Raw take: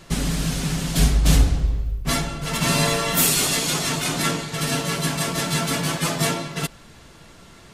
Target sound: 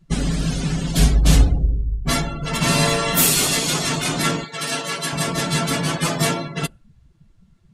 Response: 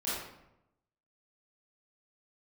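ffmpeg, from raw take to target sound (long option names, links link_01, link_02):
-filter_complex "[0:a]asettb=1/sr,asplit=3[link_01][link_02][link_03];[link_01]atrim=end=4.444[link_04];[link_02]atrim=start=4.44:end=5.13,asetpts=PTS-STARTPTS,afade=type=in:duration=0.004:curve=qsin,afade=type=out:start_time=0.686:duration=0.004:curve=qsin,highpass=frequency=560:poles=1[link_05];[link_03]atrim=start=5.126[link_06];[link_04][link_05]acrossfade=duration=0.004:curve1=hsin:curve2=qsin[link_07];[link_07][link_06]acrossfade=duration=0.004:curve1=qsin:curve2=hsin,afftdn=noise_reduction=27:noise_floor=-34,volume=2.5dB"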